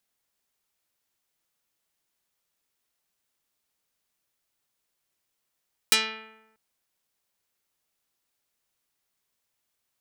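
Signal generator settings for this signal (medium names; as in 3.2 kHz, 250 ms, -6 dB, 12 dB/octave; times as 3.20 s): plucked string A3, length 0.64 s, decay 1.01 s, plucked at 0.42, dark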